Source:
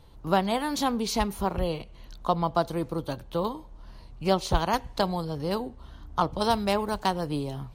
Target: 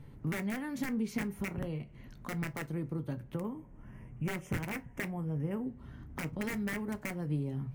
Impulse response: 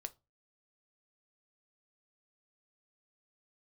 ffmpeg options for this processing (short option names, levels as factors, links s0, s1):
-filter_complex "[0:a]asettb=1/sr,asplit=3[s0][s1][s2];[s0]atrim=end=3.344[s3];[s1]atrim=start=3.34:end=5.67,asetpts=PTS-STARTPTS,afade=t=in:d=0.004:c=qsin,afade=t=out:st=2.326:d=0.004:c=qsin,asuperstop=centerf=4200:order=4:qfactor=1.5[s4];[s2]atrim=start=5.666[s5];[s3][s4]acrossfade=d=0.004:c1=hsin:c2=qsin[s6];[s6][s5]acrossfade=d=0.004:c1=qsin:c2=hsin,aeval=exprs='(mod(7.08*val(0)+1,2)-1)/7.08':c=same,acompressor=threshold=0.00631:ratio=2,equalizer=f=125:t=o:w=1:g=12,equalizer=f=250:t=o:w=1:g=11,equalizer=f=1000:t=o:w=1:g=-4,equalizer=f=2000:t=o:w=1:g=11,equalizer=f=4000:t=o:w=1:g=-11[s7];[1:a]atrim=start_sample=2205,asetrate=48510,aresample=44100[s8];[s7][s8]afir=irnorm=-1:irlink=0"